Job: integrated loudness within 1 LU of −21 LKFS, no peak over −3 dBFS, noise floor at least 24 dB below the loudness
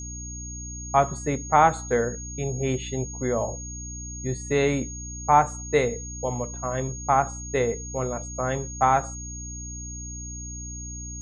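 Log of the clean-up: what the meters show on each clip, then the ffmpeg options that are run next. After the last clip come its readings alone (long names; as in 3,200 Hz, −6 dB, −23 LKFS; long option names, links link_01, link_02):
mains hum 60 Hz; hum harmonics up to 300 Hz; level of the hum −35 dBFS; interfering tone 6,600 Hz; level of the tone −37 dBFS; integrated loudness −26.5 LKFS; sample peak −5.5 dBFS; target loudness −21.0 LKFS
→ -af "bandreject=frequency=60:width_type=h:width=6,bandreject=frequency=120:width_type=h:width=6,bandreject=frequency=180:width_type=h:width=6,bandreject=frequency=240:width_type=h:width=6,bandreject=frequency=300:width_type=h:width=6"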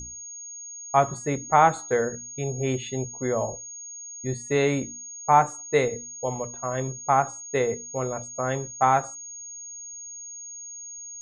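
mains hum none found; interfering tone 6,600 Hz; level of the tone −37 dBFS
→ -af "bandreject=frequency=6600:width=30"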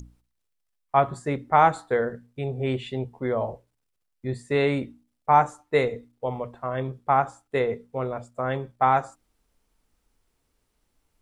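interfering tone none found; integrated loudness −25.5 LKFS; sample peak −6.0 dBFS; target loudness −21.0 LKFS
→ -af "volume=4.5dB,alimiter=limit=-3dB:level=0:latency=1"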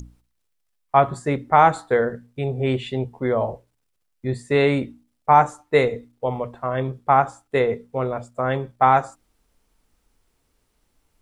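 integrated loudness −21.5 LKFS; sample peak −3.0 dBFS; background noise floor −72 dBFS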